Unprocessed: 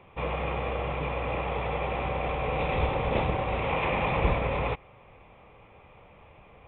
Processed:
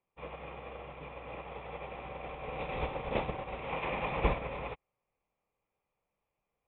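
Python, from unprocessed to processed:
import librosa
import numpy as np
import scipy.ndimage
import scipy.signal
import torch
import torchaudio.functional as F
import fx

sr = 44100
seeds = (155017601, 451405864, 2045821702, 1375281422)

y = fx.peak_eq(x, sr, hz=86.0, db=-8.0, octaves=1.0)
y = fx.upward_expand(y, sr, threshold_db=-44.0, expansion=2.5)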